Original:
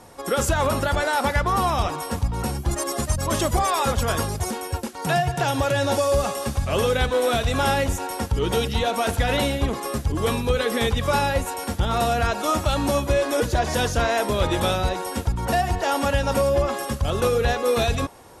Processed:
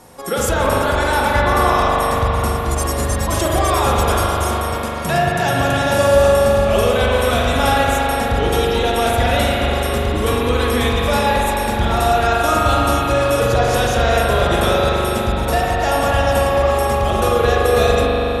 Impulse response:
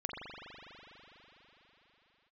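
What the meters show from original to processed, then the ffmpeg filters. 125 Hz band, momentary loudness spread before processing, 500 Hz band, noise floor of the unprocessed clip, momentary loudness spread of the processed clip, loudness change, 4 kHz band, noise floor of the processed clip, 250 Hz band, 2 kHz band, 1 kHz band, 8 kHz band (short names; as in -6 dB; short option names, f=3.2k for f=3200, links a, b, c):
+5.5 dB, 5 LU, +7.0 dB, -34 dBFS, 5 LU, +6.5 dB, +5.5 dB, -21 dBFS, +5.5 dB, +7.0 dB, +7.5 dB, +4.0 dB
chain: -filter_complex "[0:a]highshelf=f=11k:g=8[a];[1:a]atrim=start_sample=2205[b];[a][b]afir=irnorm=-1:irlink=0,volume=3.5dB"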